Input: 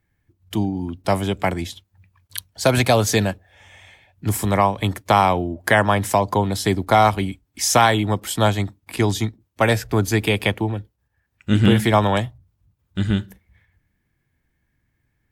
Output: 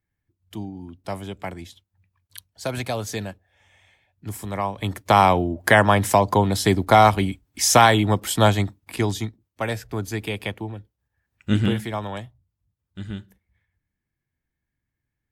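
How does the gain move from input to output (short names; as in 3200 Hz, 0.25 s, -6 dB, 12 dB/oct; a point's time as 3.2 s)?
4.49 s -11 dB
5.22 s +1 dB
8.55 s +1 dB
9.62 s -9 dB
10.78 s -9 dB
11.52 s -2 dB
11.88 s -12.5 dB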